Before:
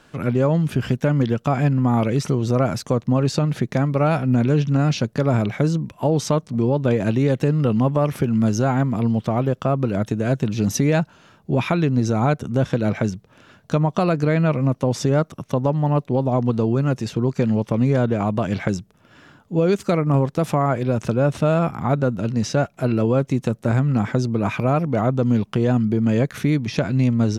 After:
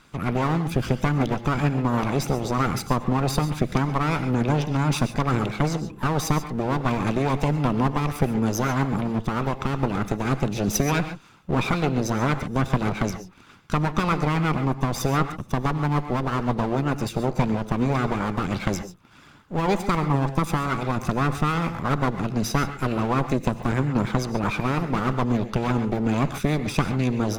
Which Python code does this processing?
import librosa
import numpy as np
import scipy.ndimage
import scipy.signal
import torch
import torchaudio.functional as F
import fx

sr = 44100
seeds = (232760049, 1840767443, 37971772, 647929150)

y = fx.lower_of_two(x, sr, delay_ms=0.81)
y = fx.rev_gated(y, sr, seeds[0], gate_ms=160, shape='rising', drr_db=8.0)
y = fx.hpss(y, sr, part='harmonic', gain_db=-7)
y = y * librosa.db_to_amplitude(2.0)